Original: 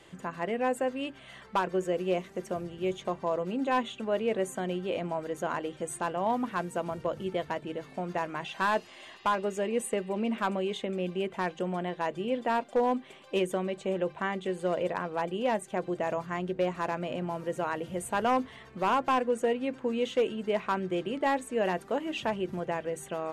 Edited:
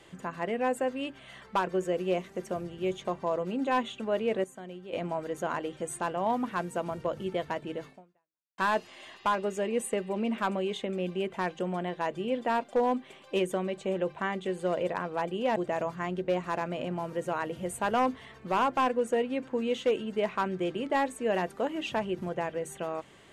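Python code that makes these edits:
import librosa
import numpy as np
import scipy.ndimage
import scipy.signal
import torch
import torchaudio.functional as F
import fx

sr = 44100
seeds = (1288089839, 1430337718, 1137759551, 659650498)

y = fx.edit(x, sr, fx.clip_gain(start_s=4.44, length_s=0.49, db=-10.5),
    fx.fade_out_span(start_s=7.87, length_s=0.71, curve='exp'),
    fx.cut(start_s=15.56, length_s=0.31), tone=tone)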